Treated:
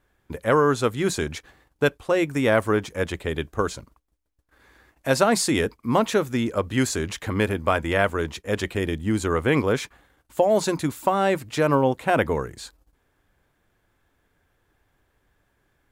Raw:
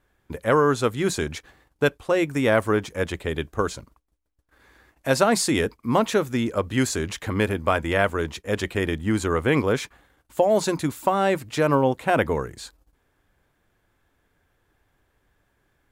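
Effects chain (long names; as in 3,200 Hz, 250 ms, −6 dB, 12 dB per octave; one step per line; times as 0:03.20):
0:08.68–0:09.24: dynamic equaliser 1,300 Hz, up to −5 dB, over −40 dBFS, Q 0.75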